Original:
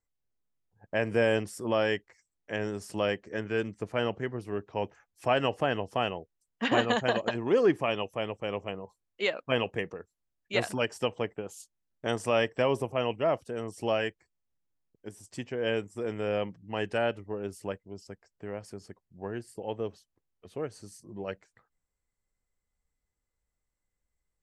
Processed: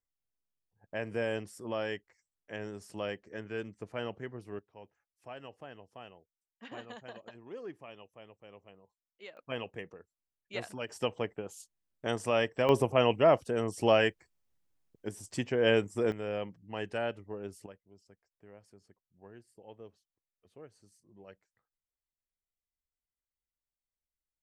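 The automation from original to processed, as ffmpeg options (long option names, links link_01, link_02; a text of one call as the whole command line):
ffmpeg -i in.wav -af "asetnsamples=nb_out_samples=441:pad=0,asendcmd='4.59 volume volume -20dB;9.37 volume volume -10dB;10.89 volume volume -2.5dB;12.69 volume volume 4dB;16.12 volume volume -5.5dB;17.66 volume volume -16dB',volume=-8dB" out.wav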